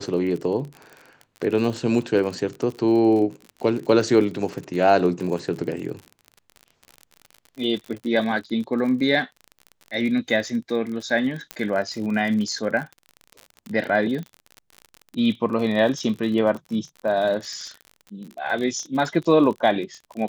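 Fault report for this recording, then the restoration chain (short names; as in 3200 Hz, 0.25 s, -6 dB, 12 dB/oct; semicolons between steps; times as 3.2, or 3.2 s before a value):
crackle 43/s -30 dBFS
11.51 pop -11 dBFS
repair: de-click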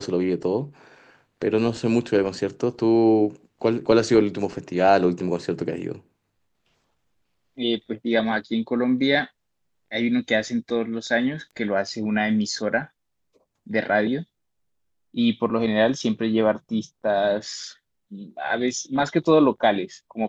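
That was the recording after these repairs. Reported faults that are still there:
11.51 pop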